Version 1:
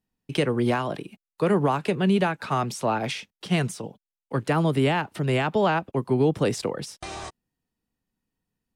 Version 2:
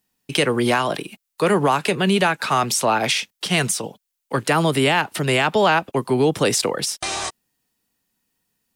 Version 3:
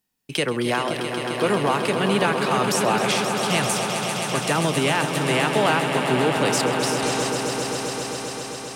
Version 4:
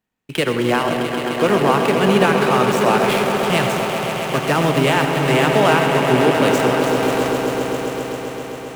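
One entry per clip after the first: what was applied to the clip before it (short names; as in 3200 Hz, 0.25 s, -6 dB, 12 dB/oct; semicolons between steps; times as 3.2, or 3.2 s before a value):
tilt +2.5 dB/oct; in parallel at -1.5 dB: limiter -20.5 dBFS, peak gain reduction 9.5 dB; on the sum: gain +3.5 dB
swelling echo 0.132 s, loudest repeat 5, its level -9 dB; gain -4.5 dB
median filter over 9 samples; in parallel at -10 dB: sample gate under -23.5 dBFS; on the sum: reverb RT60 1.7 s, pre-delay 66 ms, DRR 6 dB; gain +2.5 dB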